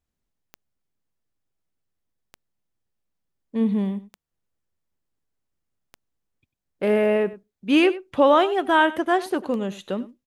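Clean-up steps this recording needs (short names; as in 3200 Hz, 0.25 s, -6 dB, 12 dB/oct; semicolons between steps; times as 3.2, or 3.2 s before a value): de-click; inverse comb 96 ms -17.5 dB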